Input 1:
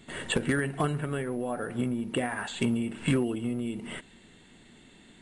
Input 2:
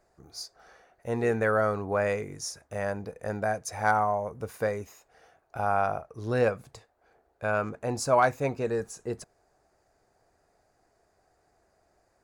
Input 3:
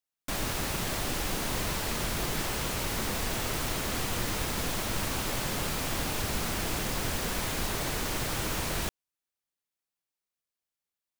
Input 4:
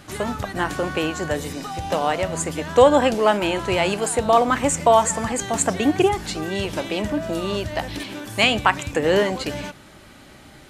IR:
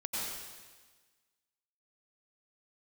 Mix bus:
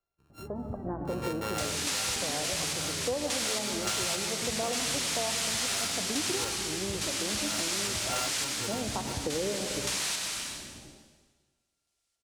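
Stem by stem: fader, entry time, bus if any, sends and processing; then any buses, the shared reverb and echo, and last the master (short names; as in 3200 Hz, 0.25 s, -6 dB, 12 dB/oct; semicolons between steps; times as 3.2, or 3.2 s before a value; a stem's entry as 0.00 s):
-8.5 dB, 1.80 s, no send, dry
-6.0 dB, 0.00 s, no send, sample sorter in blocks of 32 samples; three-band expander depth 40%
+3.0 dB, 1.30 s, send -3.5 dB, weighting filter ITU-R 468; random-step tremolo, depth 95%
-11.5 dB, 0.30 s, send -8.5 dB, Bessel low-pass 580 Hz, order 4; AGC gain up to 6.5 dB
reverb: on, RT60 1.4 s, pre-delay 83 ms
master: compressor 4:1, threshold -30 dBFS, peak gain reduction 13 dB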